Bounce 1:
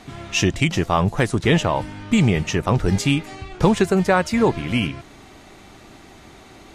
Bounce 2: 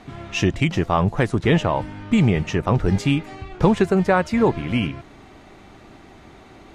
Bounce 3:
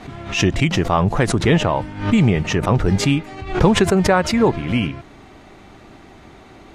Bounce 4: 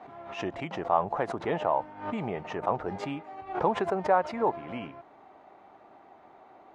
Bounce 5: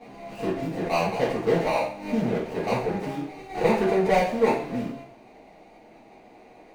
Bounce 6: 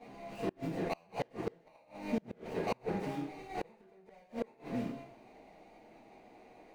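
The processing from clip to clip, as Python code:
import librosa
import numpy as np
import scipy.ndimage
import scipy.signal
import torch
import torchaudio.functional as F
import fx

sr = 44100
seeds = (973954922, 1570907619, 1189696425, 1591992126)

y1 = fx.high_shelf(x, sr, hz=4100.0, db=-11.5)
y2 = fx.pre_swell(y1, sr, db_per_s=110.0)
y2 = y2 * 10.0 ** (2.0 / 20.0)
y3 = fx.bandpass_q(y2, sr, hz=780.0, q=1.9)
y3 = y3 * 10.0 ** (-3.5 / 20.0)
y4 = scipy.ndimage.median_filter(y3, 41, mode='constant')
y4 = fx.rev_double_slope(y4, sr, seeds[0], early_s=0.48, late_s=1.7, knee_db=-25, drr_db=-8.0)
y5 = fx.gate_flip(y4, sr, shuts_db=-15.0, range_db=-32)
y5 = y5 * 10.0 ** (-7.0 / 20.0)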